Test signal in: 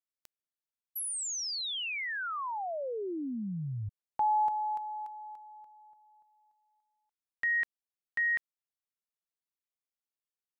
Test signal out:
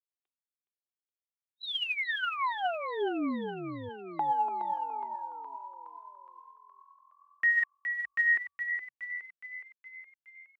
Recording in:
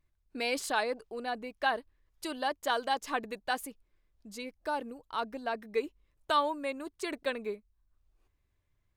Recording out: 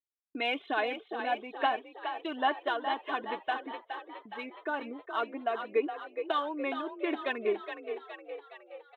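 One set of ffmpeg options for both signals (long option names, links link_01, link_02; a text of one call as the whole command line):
ffmpeg -i in.wav -filter_complex "[0:a]highpass=180,aresample=8000,aresample=44100,afftdn=noise_reduction=14:noise_floor=-52,aecho=1:1:2.8:0.52,alimiter=limit=-22dB:level=0:latency=1:release=362,aphaser=in_gain=1:out_gain=1:delay=3.3:decay=0.36:speed=1.2:type=sinusoidal,agate=range=-16dB:threshold=-54dB:ratio=3:release=434:detection=peak,asplit=2[link_01][link_02];[link_02]asplit=7[link_03][link_04][link_05][link_06][link_07][link_08][link_09];[link_03]adelay=417,afreqshift=42,volume=-8dB[link_10];[link_04]adelay=834,afreqshift=84,volume=-12.9dB[link_11];[link_05]adelay=1251,afreqshift=126,volume=-17.8dB[link_12];[link_06]adelay=1668,afreqshift=168,volume=-22.6dB[link_13];[link_07]adelay=2085,afreqshift=210,volume=-27.5dB[link_14];[link_08]adelay=2502,afreqshift=252,volume=-32.4dB[link_15];[link_09]adelay=2919,afreqshift=294,volume=-37.3dB[link_16];[link_10][link_11][link_12][link_13][link_14][link_15][link_16]amix=inputs=7:normalize=0[link_17];[link_01][link_17]amix=inputs=2:normalize=0,volume=1dB" out.wav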